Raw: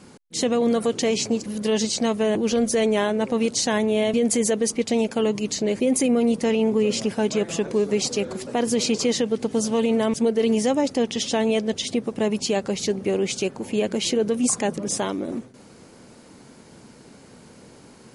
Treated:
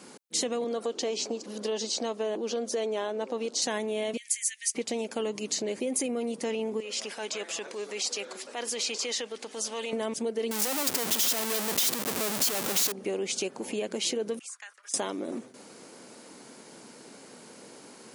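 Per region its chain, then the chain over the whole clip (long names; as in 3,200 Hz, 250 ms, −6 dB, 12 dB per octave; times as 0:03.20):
0:00.64–0:03.62: band-pass filter 260–5,500 Hz + parametric band 2,100 Hz −7 dB 0.86 octaves
0:04.17–0:04.75: Chebyshev high-pass filter 1,800 Hz, order 6 + dynamic equaliser 3,800 Hz, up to −7 dB, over −42 dBFS, Q 1
0:06.80–0:09.93: high-pass filter 1,500 Hz 6 dB per octave + high-shelf EQ 8,100 Hz −10 dB + transient designer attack −6 dB, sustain +1 dB
0:10.51–0:12.92: comparator with hysteresis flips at −39 dBFS + high-shelf EQ 4,900 Hz +10.5 dB
0:14.39–0:14.94: noise gate −30 dBFS, range −15 dB + four-pole ladder high-pass 1,300 Hz, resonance 55% + downward compressor 12 to 1, threshold −39 dBFS
whole clip: downward compressor 3 to 1, threshold −29 dBFS; high-pass filter 270 Hz 12 dB per octave; high-shelf EQ 5,700 Hz +5 dB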